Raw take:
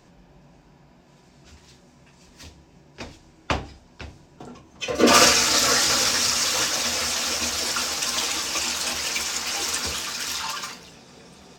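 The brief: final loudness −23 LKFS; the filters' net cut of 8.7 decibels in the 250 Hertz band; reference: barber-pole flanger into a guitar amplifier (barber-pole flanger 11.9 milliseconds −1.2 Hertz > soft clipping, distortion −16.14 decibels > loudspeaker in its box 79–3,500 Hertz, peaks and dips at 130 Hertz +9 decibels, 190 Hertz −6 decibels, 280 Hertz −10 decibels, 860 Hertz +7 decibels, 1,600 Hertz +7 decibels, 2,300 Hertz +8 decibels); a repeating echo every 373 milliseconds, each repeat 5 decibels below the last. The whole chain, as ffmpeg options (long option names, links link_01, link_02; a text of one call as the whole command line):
ffmpeg -i in.wav -filter_complex "[0:a]equalizer=frequency=250:width_type=o:gain=-4.5,aecho=1:1:373|746|1119|1492|1865|2238|2611:0.562|0.315|0.176|0.0988|0.0553|0.031|0.0173,asplit=2[link_01][link_02];[link_02]adelay=11.9,afreqshift=-1.2[link_03];[link_01][link_03]amix=inputs=2:normalize=1,asoftclip=threshold=-14.5dB,highpass=79,equalizer=frequency=130:width_type=q:width=4:gain=9,equalizer=frequency=190:width_type=q:width=4:gain=-6,equalizer=frequency=280:width_type=q:width=4:gain=-10,equalizer=frequency=860:width_type=q:width=4:gain=7,equalizer=frequency=1600:width_type=q:width=4:gain=7,equalizer=frequency=2300:width_type=q:width=4:gain=8,lowpass=frequency=3500:width=0.5412,lowpass=frequency=3500:width=1.3066,volume=2dB" out.wav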